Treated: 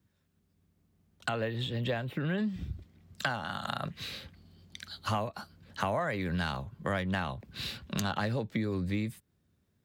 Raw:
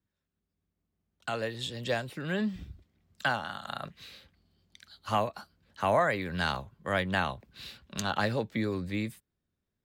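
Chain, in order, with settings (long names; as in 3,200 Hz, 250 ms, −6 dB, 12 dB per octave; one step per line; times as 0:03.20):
stylus tracing distortion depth 0.031 ms
in parallel at +2 dB: speech leveller within 3 dB 2 s
on the sum: high-pass filter 91 Hz
low-shelf EQ 160 Hz +11 dB
downward compressor 4 to 1, threshold −31 dBFS, peak gain reduction 15.5 dB
0:01.29–0:02.38: flat-topped bell 7,400 Hz −12.5 dB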